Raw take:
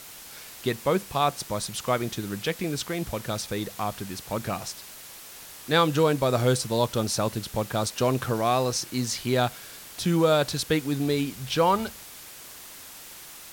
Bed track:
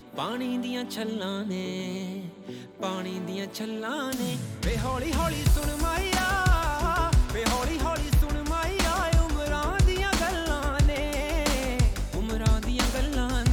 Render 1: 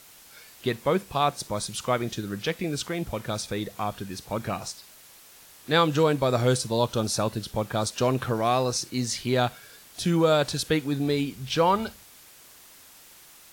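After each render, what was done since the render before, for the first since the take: noise print and reduce 7 dB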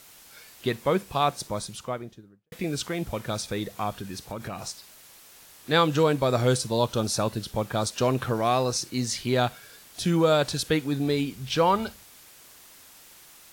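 1.33–2.52 studio fade out; 4.01–4.64 compressor, threshold -30 dBFS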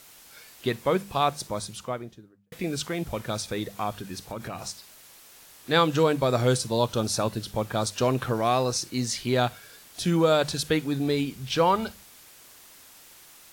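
notches 50/100/150/200 Hz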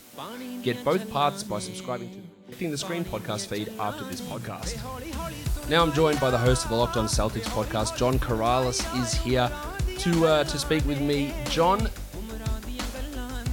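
add bed track -7 dB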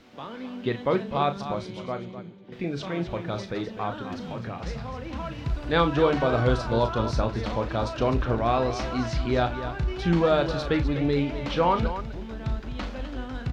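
air absorption 230 m; loudspeakers at several distances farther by 12 m -9 dB, 87 m -11 dB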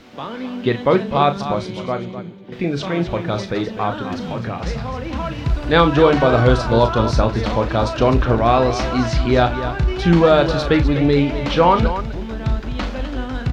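gain +9 dB; limiter -2 dBFS, peak gain reduction 1 dB

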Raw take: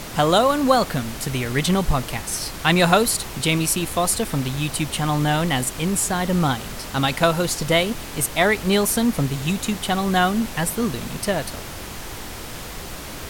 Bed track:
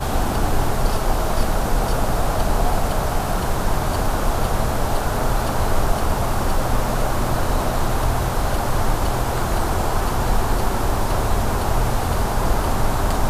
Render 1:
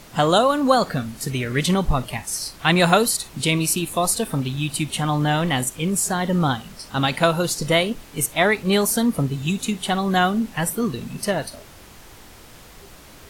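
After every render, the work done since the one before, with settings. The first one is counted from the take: noise print and reduce 11 dB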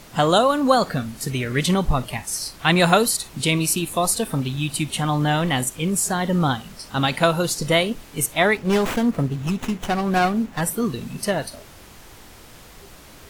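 8.57–10.61 running maximum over 9 samples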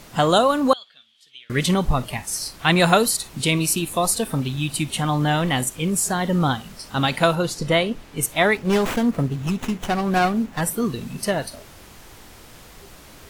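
0.73–1.5 band-pass 3300 Hz, Q 12; 7.35–8.23 high shelf 6100 Hz -10.5 dB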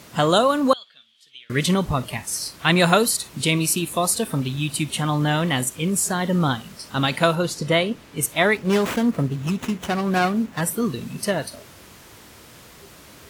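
HPF 75 Hz; bell 780 Hz -4.5 dB 0.23 oct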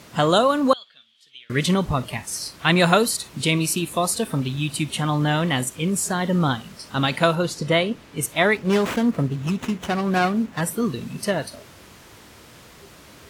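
high shelf 9000 Hz -6 dB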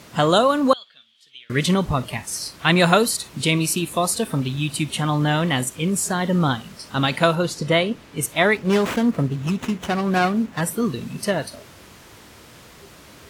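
gain +1 dB

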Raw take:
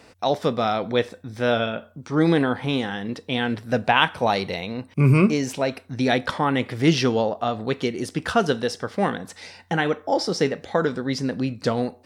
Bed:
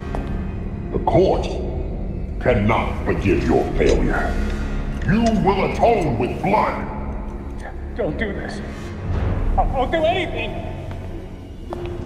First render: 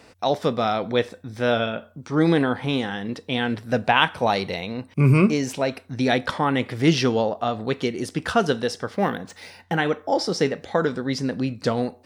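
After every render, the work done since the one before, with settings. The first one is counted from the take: 8.94–9.77 decimation joined by straight lines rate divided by 3×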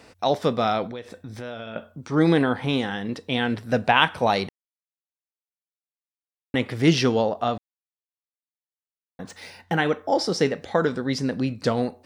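0.86–1.76 compressor, threshold -32 dBFS; 4.49–6.54 mute; 7.58–9.19 mute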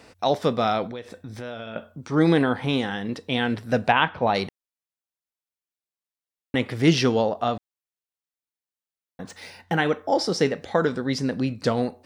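3.92–4.35 air absorption 280 m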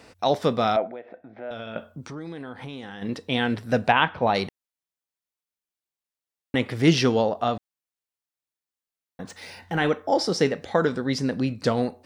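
0.76–1.51 speaker cabinet 320–2100 Hz, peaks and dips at 460 Hz -4 dB, 670 Hz +10 dB, 1100 Hz -9 dB, 1700 Hz -4 dB; 2.03–3.02 compressor 5:1, threshold -35 dBFS; 9.44–9.89 transient shaper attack -6 dB, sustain +7 dB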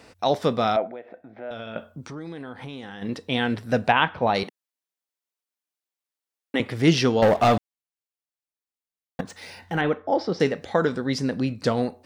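4.43–6.6 HPF 220 Hz 24 dB/oct; 7.22–9.21 sample leveller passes 3; 9.81–10.4 air absorption 240 m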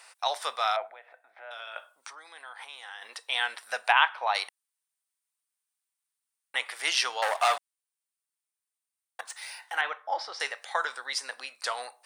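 HPF 850 Hz 24 dB/oct; bell 9100 Hz +13 dB 0.34 oct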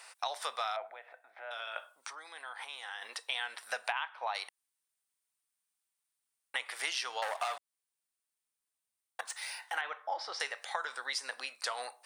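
compressor 8:1, threshold -32 dBFS, peak gain reduction 16.5 dB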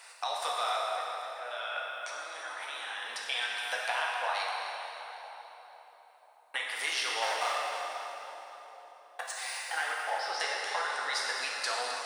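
split-band echo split 950 Hz, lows 0.498 s, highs 0.262 s, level -11.5 dB; plate-style reverb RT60 3.3 s, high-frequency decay 0.8×, DRR -3.5 dB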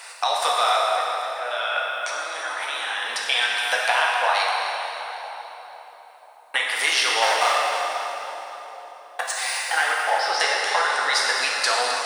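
gain +11.5 dB

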